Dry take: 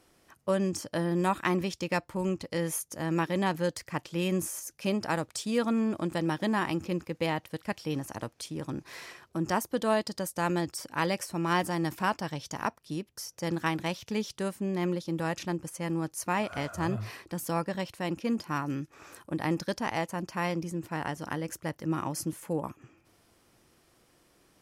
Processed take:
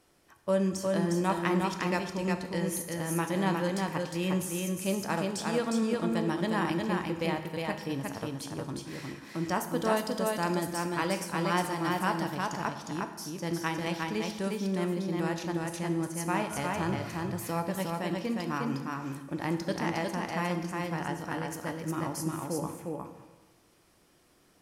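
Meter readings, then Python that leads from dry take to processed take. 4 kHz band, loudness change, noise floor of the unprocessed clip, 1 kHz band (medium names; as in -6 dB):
0.0 dB, 0.0 dB, -67 dBFS, +0.5 dB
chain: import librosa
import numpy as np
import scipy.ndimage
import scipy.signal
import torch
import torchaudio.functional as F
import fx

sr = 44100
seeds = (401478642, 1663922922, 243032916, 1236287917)

y = x + 10.0 ** (-3.0 / 20.0) * np.pad(x, (int(358 * sr / 1000.0), 0))[:len(x)]
y = fx.rev_plate(y, sr, seeds[0], rt60_s=1.2, hf_ratio=0.8, predelay_ms=0, drr_db=6.5)
y = y * librosa.db_to_amplitude(-2.5)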